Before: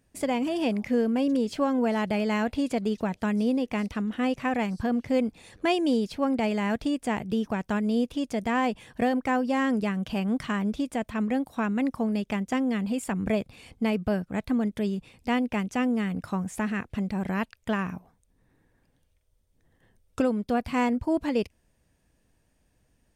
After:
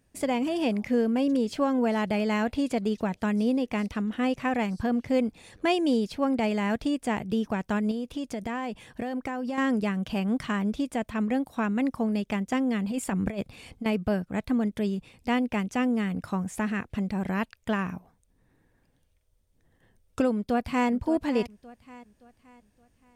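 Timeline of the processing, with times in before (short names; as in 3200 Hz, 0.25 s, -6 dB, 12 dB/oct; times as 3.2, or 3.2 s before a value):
7.91–9.58 compressor 10:1, threshold -27 dBFS
12.91–13.86 negative-ratio compressor -28 dBFS, ratio -0.5
20.34–20.89 echo throw 0.57 s, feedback 40%, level -14 dB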